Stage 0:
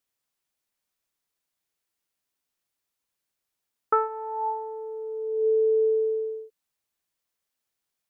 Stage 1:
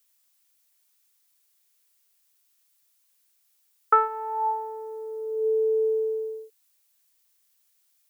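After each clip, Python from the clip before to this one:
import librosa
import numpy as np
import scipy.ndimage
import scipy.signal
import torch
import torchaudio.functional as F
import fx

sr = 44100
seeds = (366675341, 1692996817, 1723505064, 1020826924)

y = scipy.signal.sosfilt(scipy.signal.butter(2, 310.0, 'highpass', fs=sr, output='sos'), x)
y = fx.tilt_eq(y, sr, slope=3.5)
y = y * librosa.db_to_amplitude(3.5)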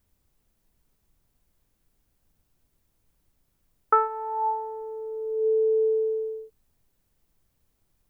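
y = fx.high_shelf(x, sr, hz=2100.0, db=-11.0)
y = fx.dmg_noise_colour(y, sr, seeds[0], colour='brown', level_db=-71.0)
y = y * librosa.db_to_amplitude(1.5)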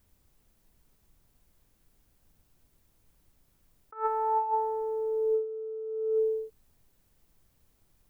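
y = fx.over_compress(x, sr, threshold_db=-28.0, ratio=-0.5)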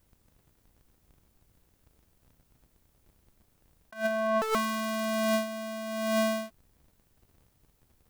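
y = fx.cycle_switch(x, sr, every=2, mode='inverted')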